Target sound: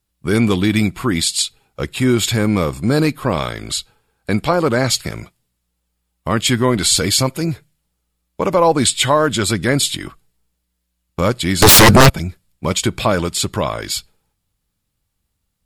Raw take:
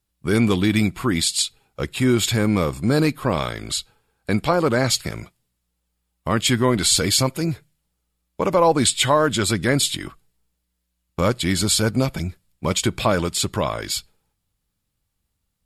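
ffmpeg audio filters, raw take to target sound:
-filter_complex "[0:a]asettb=1/sr,asplit=3[a][b][c];[a]atrim=end=11.624[d];[b]atrim=start=11.62:end=12.1,asetpts=PTS-STARTPTS,afade=t=in:d=0.004:c=qsin,afade=t=out:st=0.476:d=0.004:c=qsin,aeval=exprs='0.501*sin(PI/2*6.31*val(0)/0.501)':c=same[e];[c]atrim=start=12.096[f];[d][e]acrossfade=d=0.004:c1=hsin:c2=qsin[g];[g][f]acrossfade=d=0.004:c1=qsin:c2=hsin,volume=3dB"

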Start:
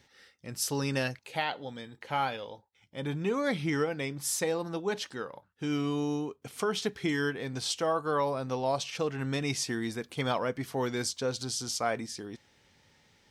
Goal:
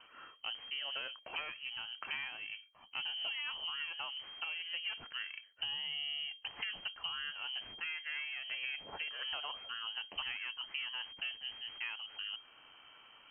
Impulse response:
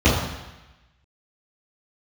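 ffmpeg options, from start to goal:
-filter_complex "[0:a]aeval=exprs='if(lt(val(0),0),0.447*val(0),val(0))':c=same,asettb=1/sr,asplit=3[a][b][c];[a]atrim=end=7.674[d];[b]atrim=start=7.67:end=9.87,asetpts=PTS-STARTPTS,afade=t=in:d=0.004:c=qsin,afade=t=out:st=2.196:d=0.004:c=qsin,equalizer=f=210:t=o:w=2.1:g=-8.5[e];[c]atrim=start=9.866[f];[d][e]acrossfade=d=0.004:c1=hsin:c2=qsin[g];[g][f]acrossfade=d=0.004:c1=qsin:c2=hsin,acompressor=threshold=-45dB:ratio=16,volume=35dB,asoftclip=hard,volume=-35dB,lowpass=f=2.7k:t=q:w=0.5098,lowpass=f=2.7k:t=q:w=0.6013,lowpass=f=2.7k:t=q:w=0.9,lowpass=f=2.7k:t=q:w=2.563,afreqshift=-3200,volume=8.5dB"

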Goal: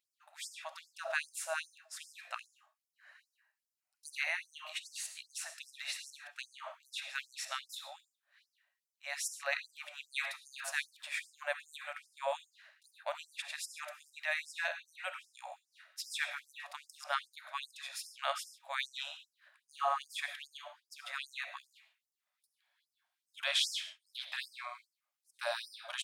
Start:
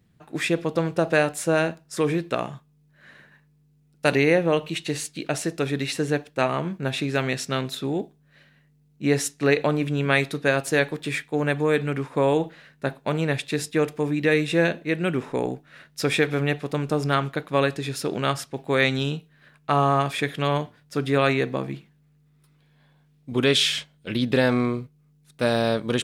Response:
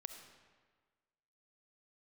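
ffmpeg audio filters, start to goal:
-filter_complex "[0:a]asettb=1/sr,asplit=3[a][b][c];[a]atrim=end=2.164[d];[b]atrim=start=2.16:end=4.08,asetpts=PTS-STARTPTS,afade=t=in:d=0.004:c=qsin,afade=t=out:st=1.916:d=0.004:c=qsin,bandreject=f=3.5k:w=5.6[e];[c]atrim=start=4.076[f];[d][e]acrossfade=d=0.004:c1=hsin:c2=qsin[g];[g][f]acrossfade=d=0.004:c1=qsin:c2=hsin[h];[1:a]atrim=start_sample=2205,afade=t=out:st=0.2:d=0.01,atrim=end_sample=9261[i];[h][i]afir=irnorm=-1:irlink=0,afftfilt=real='re*gte(b*sr/1024,520*pow(5000/520,0.5+0.5*sin(2*PI*2.5*pts/sr)))':imag='im*gte(b*sr/1024,520*pow(5000/520,0.5+0.5*sin(2*PI*2.5*pts/sr)))':win_size=1024:overlap=0.75,volume=-4.5dB"

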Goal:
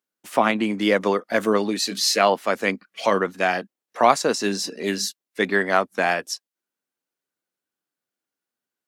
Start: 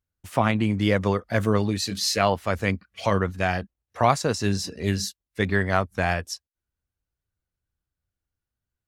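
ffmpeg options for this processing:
-af "highpass=f=230:w=0.5412,highpass=f=230:w=1.3066,volume=4dB"

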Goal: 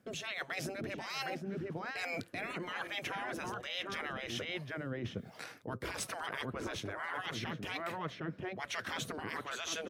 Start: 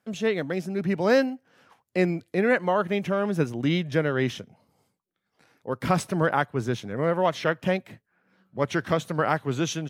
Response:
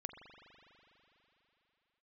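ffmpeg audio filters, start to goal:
-filter_complex "[0:a]equalizer=f=880:w=3.7:g=-5,asplit=2[a][b];[b]adelay=758,volume=-9dB,highshelf=f=4k:g=-17.1[c];[a][c]amix=inputs=2:normalize=0,afftfilt=real='re*lt(hypot(re,im),0.112)':imag='im*lt(hypot(re,im),0.112)':win_size=1024:overlap=0.75,asplit=2[d][e];[e]alimiter=level_in=6dB:limit=-24dB:level=0:latency=1:release=76,volume=-6dB,volume=-1dB[f];[d][f]amix=inputs=2:normalize=0,acrossover=split=500[g][h];[g]aeval=exprs='val(0)*(1-0.7/2+0.7/2*cos(2*PI*1.2*n/s))':c=same[i];[h]aeval=exprs='val(0)*(1-0.7/2-0.7/2*cos(2*PI*1.2*n/s))':c=same[j];[i][j]amix=inputs=2:normalize=0,areverse,acompressor=threshold=-48dB:ratio=16,areverse,volume=12dB"

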